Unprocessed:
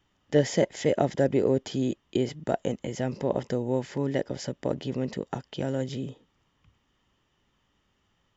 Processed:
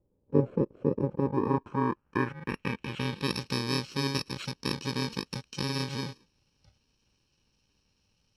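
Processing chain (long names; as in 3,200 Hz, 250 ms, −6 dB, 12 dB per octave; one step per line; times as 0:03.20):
samples in bit-reversed order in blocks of 64 samples
low-pass filter sweep 530 Hz → 4,500 Hz, 0:00.95–0:03.41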